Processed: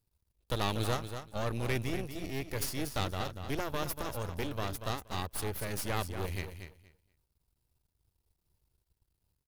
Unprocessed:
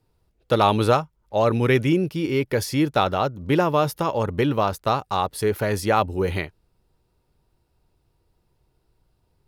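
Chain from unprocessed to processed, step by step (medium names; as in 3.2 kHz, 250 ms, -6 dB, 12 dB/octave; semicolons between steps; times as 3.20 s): pre-emphasis filter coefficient 0.8; feedback delay 237 ms, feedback 18%, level -9 dB; half-wave rectifier; peaking EQ 61 Hz +12 dB 2.3 oct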